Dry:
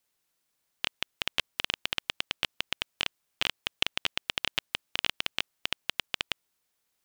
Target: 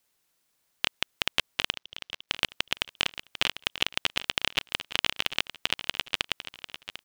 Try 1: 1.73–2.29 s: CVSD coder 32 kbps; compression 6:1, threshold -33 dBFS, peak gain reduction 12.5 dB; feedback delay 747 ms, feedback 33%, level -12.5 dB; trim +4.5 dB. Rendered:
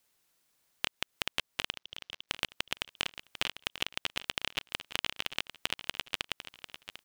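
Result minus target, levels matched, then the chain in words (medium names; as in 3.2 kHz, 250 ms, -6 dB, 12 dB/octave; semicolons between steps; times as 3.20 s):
compression: peak gain reduction +8 dB
1.73–2.29 s: CVSD coder 32 kbps; compression 6:1, threshold -23.5 dBFS, peak gain reduction 4.5 dB; feedback delay 747 ms, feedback 33%, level -12.5 dB; trim +4.5 dB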